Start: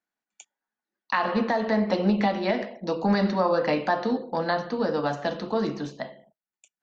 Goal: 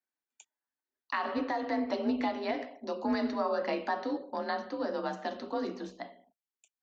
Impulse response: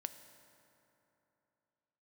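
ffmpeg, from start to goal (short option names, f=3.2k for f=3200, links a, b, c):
-af "afreqshift=45,volume=-8dB"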